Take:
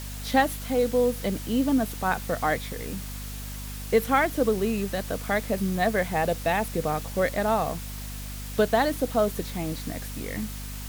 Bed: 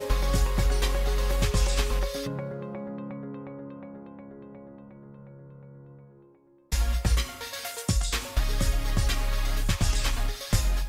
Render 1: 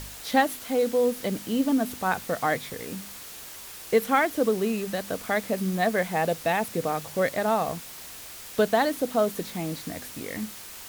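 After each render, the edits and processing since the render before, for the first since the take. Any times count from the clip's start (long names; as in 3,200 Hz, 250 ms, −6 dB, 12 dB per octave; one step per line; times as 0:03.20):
hum removal 50 Hz, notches 5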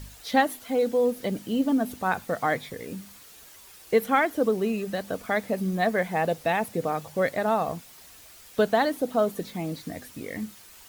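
broadband denoise 9 dB, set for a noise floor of −42 dBFS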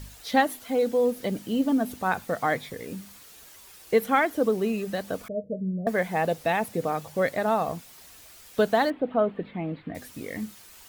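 0:05.28–0:05.87: Chebyshev low-pass with heavy ripple 640 Hz, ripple 9 dB
0:08.90–0:09.95: inverse Chebyshev low-pass filter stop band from 5,600 Hz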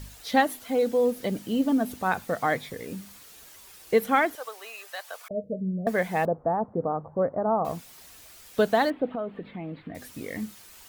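0:04.35–0:05.31: high-pass filter 780 Hz 24 dB per octave
0:06.25–0:07.65: Butterworth low-pass 1,200 Hz
0:09.15–0:10.09: downward compressor 2 to 1, threshold −35 dBFS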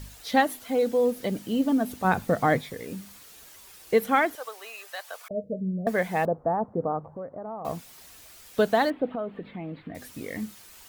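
0:02.04–0:02.61: low-shelf EQ 440 Hz +10 dB
0:06.99–0:07.65: downward compressor 2.5 to 1, threshold −39 dBFS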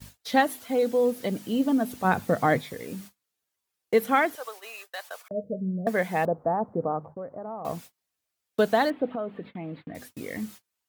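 noise gate −43 dBFS, range −34 dB
high-pass filter 82 Hz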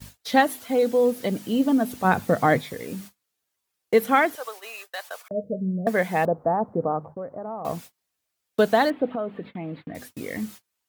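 level +3 dB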